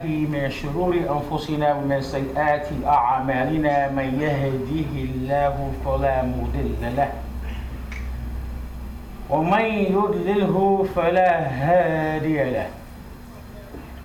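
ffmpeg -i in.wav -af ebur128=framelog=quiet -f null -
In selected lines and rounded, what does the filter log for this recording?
Integrated loudness:
  I:         -22.3 LUFS
  Threshold: -32.9 LUFS
Loudness range:
  LRA:         6.1 LU
  Threshold: -42.6 LUFS
  LRA low:   -26.3 LUFS
  LRA high:  -20.2 LUFS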